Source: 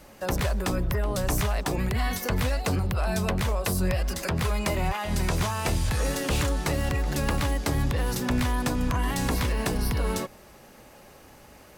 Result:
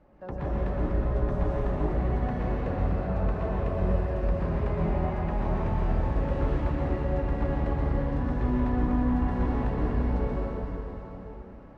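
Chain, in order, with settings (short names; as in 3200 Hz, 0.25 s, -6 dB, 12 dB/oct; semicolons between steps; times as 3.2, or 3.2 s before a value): Bessel low-pass 920 Hz, order 2; plate-style reverb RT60 4.2 s, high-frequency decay 0.95×, pre-delay 0.105 s, DRR -7 dB; gain -8 dB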